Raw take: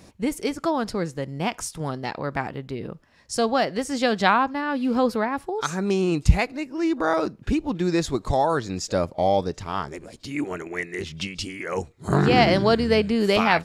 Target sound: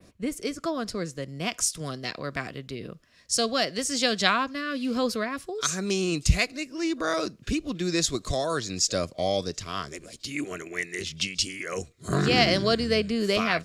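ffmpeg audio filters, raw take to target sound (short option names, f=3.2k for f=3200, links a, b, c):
-filter_complex "[0:a]adynamicequalizer=threshold=0.00794:dfrequency=6400:dqfactor=0.87:tfrequency=6400:tqfactor=0.87:attack=5:release=100:ratio=0.375:range=3:mode=boostabove:tftype=bell,acrossover=split=180|2300[a][b][c];[b]asuperstop=centerf=860:order=4:qfactor=4.1[d];[c]dynaudnorm=f=370:g=7:m=9dB[e];[a][d][e]amix=inputs=3:normalize=0,volume=-5dB"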